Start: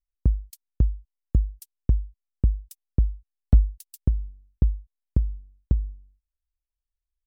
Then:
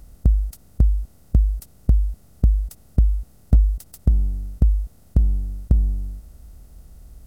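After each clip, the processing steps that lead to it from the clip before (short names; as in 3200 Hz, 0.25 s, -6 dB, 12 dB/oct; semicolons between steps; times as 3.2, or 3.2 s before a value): per-bin compression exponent 0.4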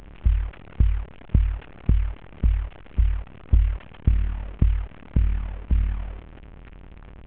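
delta modulation 16 kbps, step -33 dBFS; AM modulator 37 Hz, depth 60%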